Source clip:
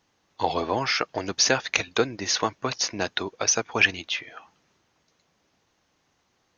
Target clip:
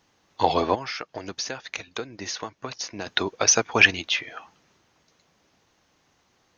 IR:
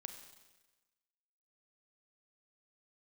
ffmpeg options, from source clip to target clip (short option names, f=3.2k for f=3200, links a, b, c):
-filter_complex "[0:a]asplit=3[a][b][c];[a]afade=t=out:st=0.74:d=0.02[d];[b]acompressor=threshold=-36dB:ratio=4,afade=t=in:st=0.74:d=0.02,afade=t=out:st=3.06:d=0.02[e];[c]afade=t=in:st=3.06:d=0.02[f];[d][e][f]amix=inputs=3:normalize=0,volume=4dB"